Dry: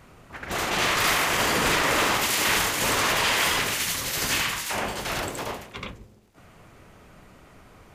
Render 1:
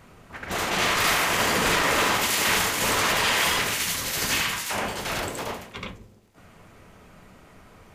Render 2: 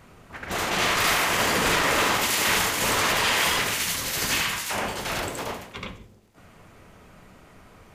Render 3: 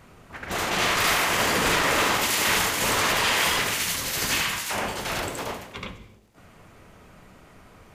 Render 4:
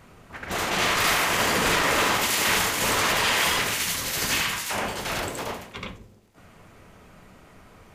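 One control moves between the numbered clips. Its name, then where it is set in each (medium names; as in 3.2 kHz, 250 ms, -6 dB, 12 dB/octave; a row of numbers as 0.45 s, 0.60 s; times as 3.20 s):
gated-style reverb, gate: 90 ms, 200 ms, 320 ms, 130 ms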